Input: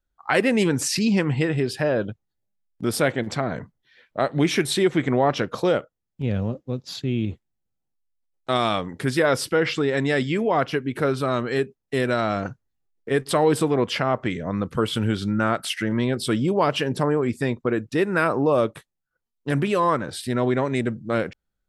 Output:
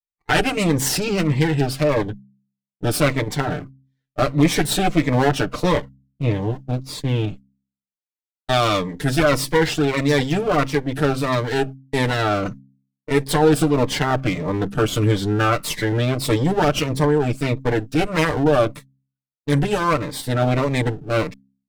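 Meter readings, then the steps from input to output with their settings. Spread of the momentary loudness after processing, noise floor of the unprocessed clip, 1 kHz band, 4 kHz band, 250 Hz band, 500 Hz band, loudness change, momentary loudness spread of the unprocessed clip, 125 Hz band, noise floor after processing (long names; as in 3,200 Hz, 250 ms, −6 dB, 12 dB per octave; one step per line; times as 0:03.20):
7 LU, −80 dBFS, +3.0 dB, +3.5 dB, +2.5 dB, +2.0 dB, +3.0 dB, 7 LU, +6.0 dB, below −85 dBFS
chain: lower of the sound and its delayed copy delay 6.7 ms
downward expander −35 dBFS
hum removal 66.82 Hz, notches 4
phaser whose notches keep moving one way falling 1.6 Hz
level +5.5 dB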